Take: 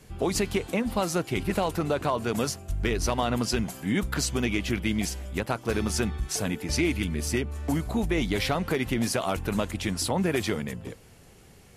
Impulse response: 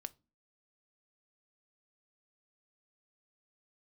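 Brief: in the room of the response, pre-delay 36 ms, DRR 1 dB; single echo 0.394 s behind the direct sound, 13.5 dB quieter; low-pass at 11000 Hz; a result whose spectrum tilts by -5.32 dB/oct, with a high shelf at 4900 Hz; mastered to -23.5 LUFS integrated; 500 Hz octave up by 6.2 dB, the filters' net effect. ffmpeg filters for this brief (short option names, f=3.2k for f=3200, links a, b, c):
-filter_complex "[0:a]lowpass=11k,equalizer=f=500:t=o:g=8,highshelf=f=4.9k:g=-5,aecho=1:1:394:0.211,asplit=2[a][b];[1:a]atrim=start_sample=2205,adelay=36[c];[b][c]afir=irnorm=-1:irlink=0,volume=3dB[d];[a][d]amix=inputs=2:normalize=0,volume=-1dB"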